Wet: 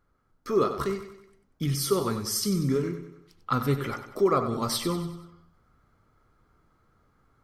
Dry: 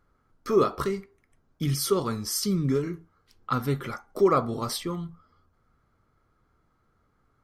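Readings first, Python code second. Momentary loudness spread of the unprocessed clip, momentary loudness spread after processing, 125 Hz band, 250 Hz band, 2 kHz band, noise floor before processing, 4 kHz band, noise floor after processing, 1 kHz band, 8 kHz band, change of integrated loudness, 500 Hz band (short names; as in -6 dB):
14 LU, 16 LU, 0.0 dB, 0.0 dB, +0.5 dB, -70 dBFS, +1.0 dB, -69 dBFS, -0.5 dB, +0.5 dB, -0.5 dB, -1.0 dB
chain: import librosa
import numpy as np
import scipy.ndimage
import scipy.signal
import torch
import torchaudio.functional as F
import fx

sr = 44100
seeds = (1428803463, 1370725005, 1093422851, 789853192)

y = fx.rider(x, sr, range_db=3, speed_s=0.5)
y = fx.echo_feedback(y, sr, ms=95, feedback_pct=47, wet_db=-10.5)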